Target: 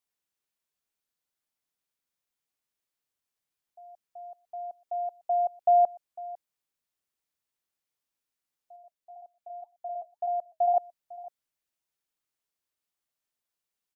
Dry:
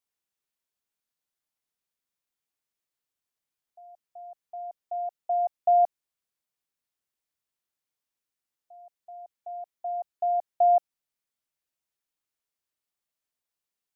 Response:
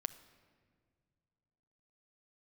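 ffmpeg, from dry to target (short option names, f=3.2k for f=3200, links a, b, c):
-filter_complex "[0:a]asettb=1/sr,asplit=3[a][b][c];[a]atrim=end=8.764[d];[b]atrim=start=8.76:end=10.77,asetpts=PTS-STARTPTS,afade=t=in:d=0.004:c=qsin,afade=t=out:st=2.006:d=0.004:c=qsin,flanger=delay=1.4:depth=4.1:regen=-68:speed=1.9:shape=sinusoidal[e];[c]atrim=start=10.766[f];[d][e]acrossfade=d=0.004:c1=hsin:c2=qsin[g];[g][f]acrossfade=d=0.004:c1=qsin:c2=hsin,asplit=2[h][i];[i]adelay=501.5,volume=-19dB,highshelf=f=4k:g=-11.3[j];[h][j]amix=inputs=2:normalize=0"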